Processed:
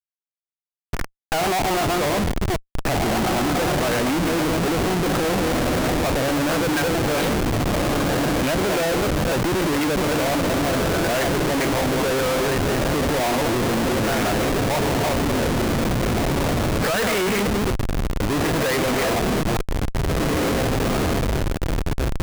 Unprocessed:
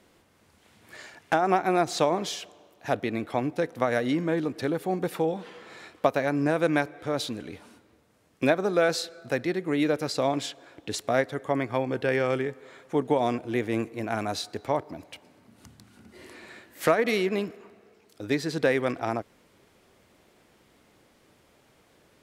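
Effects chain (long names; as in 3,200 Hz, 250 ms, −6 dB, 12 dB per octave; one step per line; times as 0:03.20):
delay that plays each chunk backwards 233 ms, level −7 dB
on a send: feedback delay with all-pass diffusion 1,920 ms, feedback 58%, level −9.5 dB
on the sum: auto-filter low-pass saw up 0.68 Hz 930–2,900 Hz
comparator with hysteresis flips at −32 dBFS
level +5.5 dB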